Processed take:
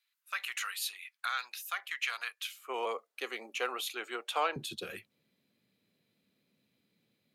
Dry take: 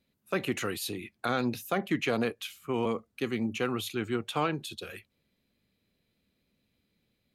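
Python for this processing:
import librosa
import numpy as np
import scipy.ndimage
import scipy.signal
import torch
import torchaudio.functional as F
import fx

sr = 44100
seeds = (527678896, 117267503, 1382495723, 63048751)

y = fx.highpass(x, sr, hz=fx.steps((0.0, 1200.0), (2.59, 510.0), (4.56, 120.0)), slope=24)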